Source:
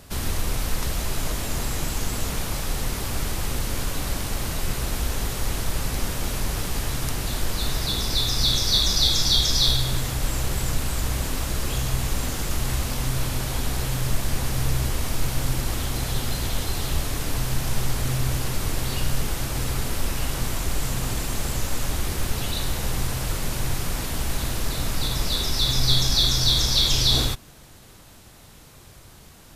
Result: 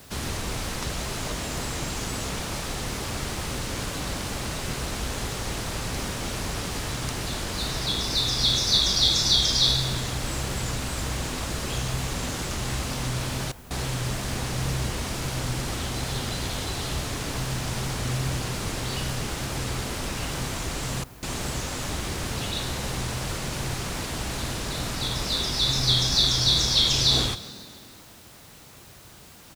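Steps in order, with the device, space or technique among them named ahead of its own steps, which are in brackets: HPF 95 Hz 6 dB/oct; frequency-shifting echo 0.138 s, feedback 63%, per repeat +38 Hz, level -17.5 dB; worn cassette (LPF 8700 Hz 12 dB/oct; wow and flutter; level dips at 13.52/21.04, 0.185 s -16 dB; white noise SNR 25 dB)

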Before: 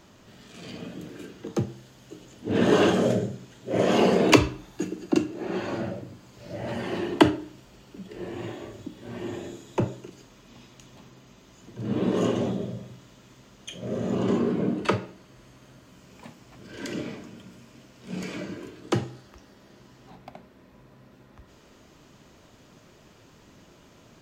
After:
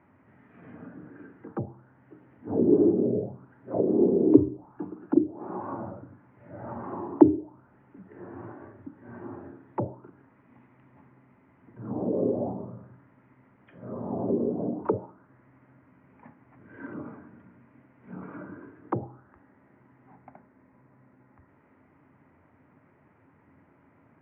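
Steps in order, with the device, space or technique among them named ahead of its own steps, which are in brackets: envelope filter bass rig (envelope low-pass 370–2100 Hz down, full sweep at -18 dBFS; speaker cabinet 89–2000 Hz, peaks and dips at 89 Hz +10 dB, 140 Hz +5 dB, 270 Hz +8 dB, 870 Hz +6 dB, 1800 Hz -6 dB); gain -10 dB

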